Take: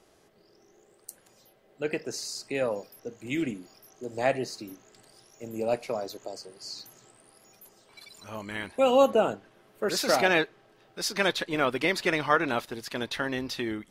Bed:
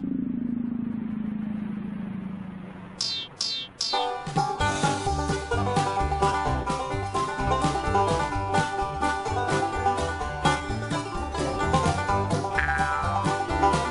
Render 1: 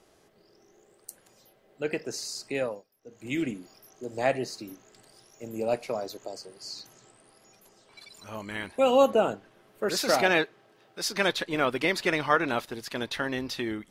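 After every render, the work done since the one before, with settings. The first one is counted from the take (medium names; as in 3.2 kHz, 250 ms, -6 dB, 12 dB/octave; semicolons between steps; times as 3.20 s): 2.58–3.27 s: dip -20 dB, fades 0.26 s; 6.80–8.14 s: low-pass 9.6 kHz; 10.34–11.01 s: high-pass 60 Hz -> 190 Hz 6 dB/octave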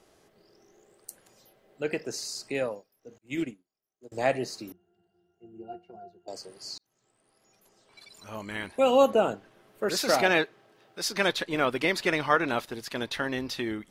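3.18–4.12 s: upward expansion 2.5:1, over -50 dBFS; 4.72–6.28 s: pitch-class resonator F, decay 0.17 s; 6.78–8.42 s: fade in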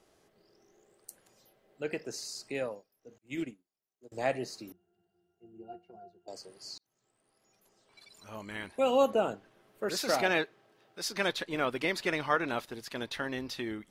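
trim -5 dB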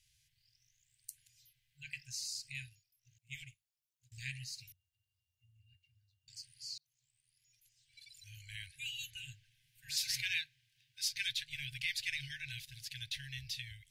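FFT band-reject 140–1500 Hz; high-order bell 1.1 kHz -14.5 dB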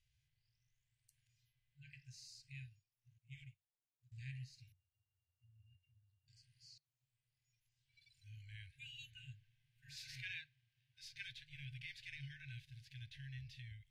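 low-pass 1.3 kHz 6 dB/octave; harmonic-percussive split percussive -10 dB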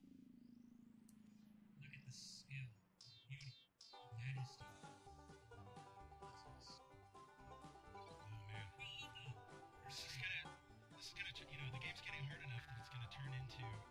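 add bed -36 dB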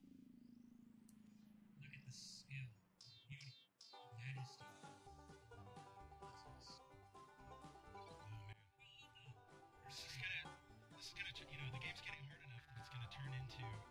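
3.32–4.87 s: high-pass 130 Hz; 8.53–10.39 s: fade in, from -20.5 dB; 12.14–12.76 s: gain -7 dB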